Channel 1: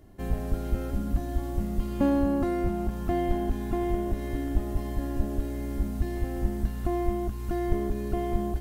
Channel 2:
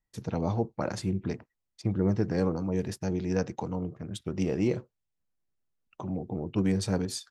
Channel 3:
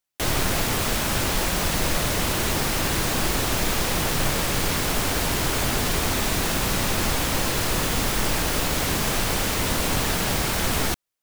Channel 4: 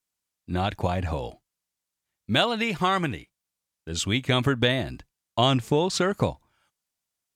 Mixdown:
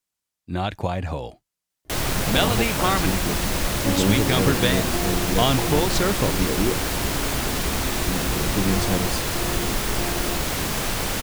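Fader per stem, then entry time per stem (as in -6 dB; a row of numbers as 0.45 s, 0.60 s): -2.5 dB, +3.0 dB, -1.5 dB, +0.5 dB; 1.85 s, 2.00 s, 1.70 s, 0.00 s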